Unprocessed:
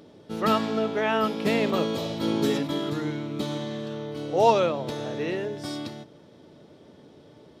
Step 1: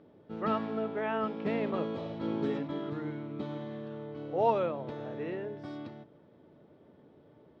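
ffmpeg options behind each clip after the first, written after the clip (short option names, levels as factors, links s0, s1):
-af "lowpass=2000,volume=0.422"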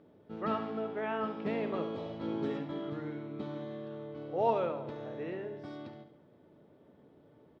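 -af "aecho=1:1:70|140|210|280|350:0.282|0.135|0.0649|0.0312|0.015,volume=0.75"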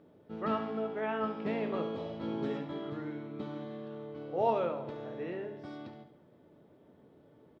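-filter_complex "[0:a]asplit=2[s0][s1];[s1]adelay=23,volume=0.282[s2];[s0][s2]amix=inputs=2:normalize=0"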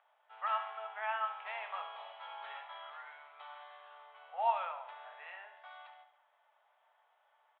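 -af "asuperpass=centerf=1600:order=12:qfactor=0.59,volume=1.26"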